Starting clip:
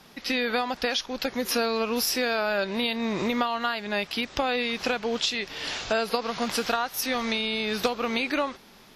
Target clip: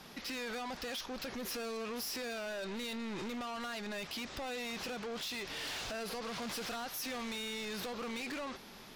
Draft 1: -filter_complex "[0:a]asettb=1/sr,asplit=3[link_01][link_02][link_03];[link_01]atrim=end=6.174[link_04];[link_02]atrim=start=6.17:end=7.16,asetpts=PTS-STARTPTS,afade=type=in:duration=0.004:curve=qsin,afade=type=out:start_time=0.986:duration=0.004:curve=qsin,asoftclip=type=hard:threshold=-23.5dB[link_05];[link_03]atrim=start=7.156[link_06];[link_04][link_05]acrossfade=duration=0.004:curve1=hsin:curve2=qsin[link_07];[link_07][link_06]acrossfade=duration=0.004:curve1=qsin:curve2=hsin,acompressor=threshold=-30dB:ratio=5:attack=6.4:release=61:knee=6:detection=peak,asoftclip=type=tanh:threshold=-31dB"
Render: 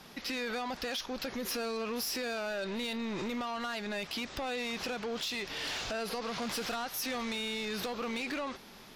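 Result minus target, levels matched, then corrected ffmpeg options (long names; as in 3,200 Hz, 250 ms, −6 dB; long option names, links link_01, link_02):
soft clipping: distortion −5 dB
-filter_complex "[0:a]asettb=1/sr,asplit=3[link_01][link_02][link_03];[link_01]atrim=end=6.174[link_04];[link_02]atrim=start=6.17:end=7.16,asetpts=PTS-STARTPTS,afade=type=in:duration=0.004:curve=qsin,afade=type=out:start_time=0.986:duration=0.004:curve=qsin,asoftclip=type=hard:threshold=-23.5dB[link_05];[link_03]atrim=start=7.156[link_06];[link_04][link_05]acrossfade=duration=0.004:curve1=hsin:curve2=qsin[link_07];[link_07][link_06]acrossfade=duration=0.004:curve1=qsin:curve2=hsin,acompressor=threshold=-30dB:ratio=5:attack=6.4:release=61:knee=6:detection=peak,asoftclip=type=tanh:threshold=-38dB"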